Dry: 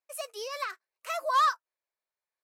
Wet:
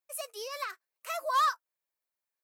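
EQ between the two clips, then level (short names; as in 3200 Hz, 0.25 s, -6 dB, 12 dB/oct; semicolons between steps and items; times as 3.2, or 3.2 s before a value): high shelf 11000 Hz +11 dB; -2.5 dB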